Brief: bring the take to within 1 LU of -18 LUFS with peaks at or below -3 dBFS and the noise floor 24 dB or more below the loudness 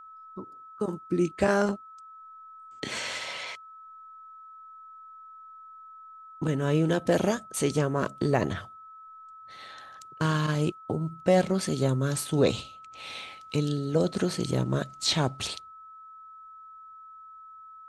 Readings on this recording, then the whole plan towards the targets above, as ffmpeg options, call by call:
steady tone 1.3 kHz; tone level -45 dBFS; loudness -28.0 LUFS; peak level -8.5 dBFS; loudness target -18.0 LUFS
-> -af "bandreject=f=1300:w=30"
-af "volume=3.16,alimiter=limit=0.708:level=0:latency=1"

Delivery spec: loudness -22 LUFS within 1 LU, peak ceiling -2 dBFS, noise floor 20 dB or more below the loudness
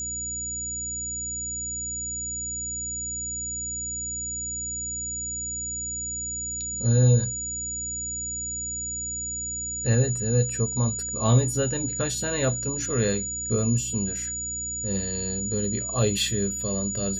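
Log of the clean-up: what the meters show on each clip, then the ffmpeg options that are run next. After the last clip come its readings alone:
hum 60 Hz; highest harmonic 300 Hz; hum level -40 dBFS; steady tone 6.9 kHz; tone level -29 dBFS; loudness -26.0 LUFS; peak level -8.5 dBFS; loudness target -22.0 LUFS
-> -af "bandreject=f=60:t=h:w=4,bandreject=f=120:t=h:w=4,bandreject=f=180:t=h:w=4,bandreject=f=240:t=h:w=4,bandreject=f=300:t=h:w=4"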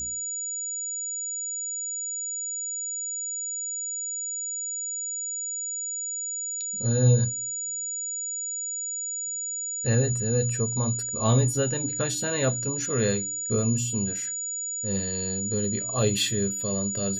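hum not found; steady tone 6.9 kHz; tone level -29 dBFS
-> -af "bandreject=f=6900:w=30"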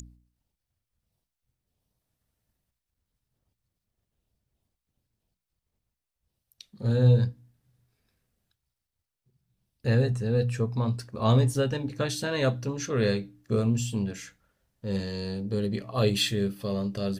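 steady tone not found; loudness -27.5 LUFS; peak level -10.5 dBFS; loudness target -22.0 LUFS
-> -af "volume=1.88"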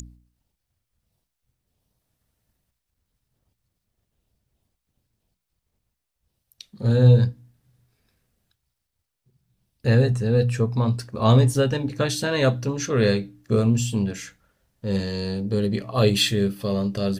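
loudness -22.0 LUFS; peak level -5.0 dBFS; noise floor -81 dBFS

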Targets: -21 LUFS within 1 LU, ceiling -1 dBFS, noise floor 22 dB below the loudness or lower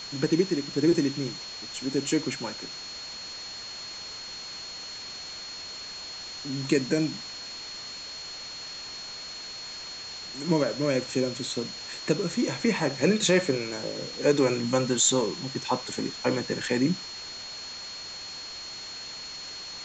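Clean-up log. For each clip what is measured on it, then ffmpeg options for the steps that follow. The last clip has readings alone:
steady tone 4.3 kHz; tone level -38 dBFS; noise floor -40 dBFS; noise floor target -51 dBFS; loudness -29.0 LUFS; peak level -9.5 dBFS; loudness target -21.0 LUFS
-> -af "bandreject=f=4300:w=30"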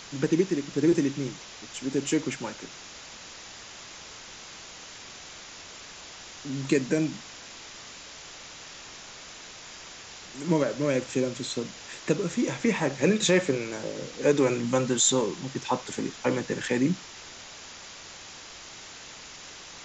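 steady tone not found; noise floor -45 dBFS; noise floor target -49 dBFS
-> -af "afftdn=nr=6:nf=-45"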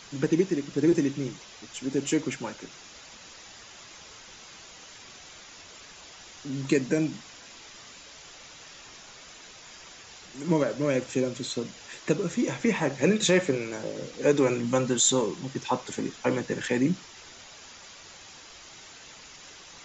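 noise floor -48 dBFS; noise floor target -49 dBFS
-> -af "afftdn=nr=6:nf=-48"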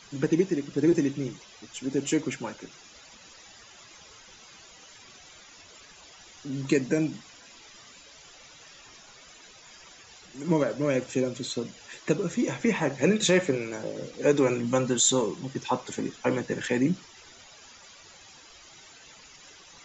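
noise floor -52 dBFS; loudness -27.5 LUFS; peak level -9.5 dBFS; loudness target -21.0 LUFS
-> -af "volume=2.11"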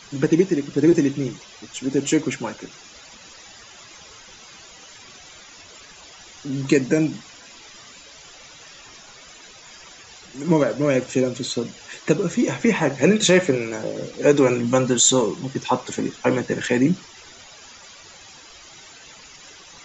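loudness -21.0 LUFS; peak level -3.0 dBFS; noise floor -45 dBFS

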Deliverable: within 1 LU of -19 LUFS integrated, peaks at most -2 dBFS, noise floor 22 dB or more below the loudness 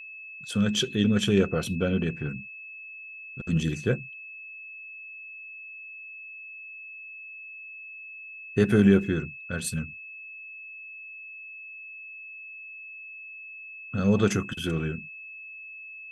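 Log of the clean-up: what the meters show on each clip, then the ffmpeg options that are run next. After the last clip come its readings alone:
steady tone 2.6 kHz; tone level -40 dBFS; loudness -26.5 LUFS; peak level -8.0 dBFS; loudness target -19.0 LUFS
-> -af "bandreject=f=2600:w=30"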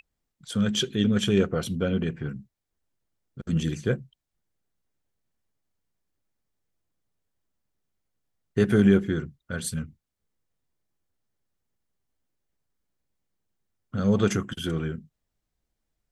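steady tone not found; loudness -26.0 LUFS; peak level -8.0 dBFS; loudness target -19.0 LUFS
-> -af "volume=2.24,alimiter=limit=0.794:level=0:latency=1"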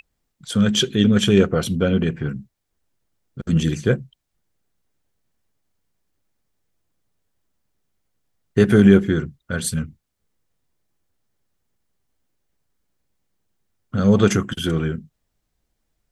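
loudness -19.0 LUFS; peak level -2.0 dBFS; noise floor -76 dBFS

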